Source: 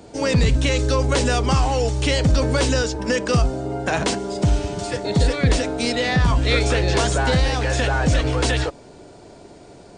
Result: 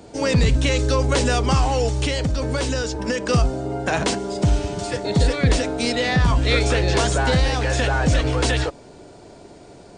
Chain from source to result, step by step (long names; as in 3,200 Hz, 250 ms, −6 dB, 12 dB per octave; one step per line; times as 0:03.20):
0:02.04–0:03.28: downward compressor, threshold −19 dBFS, peak gain reduction 6.5 dB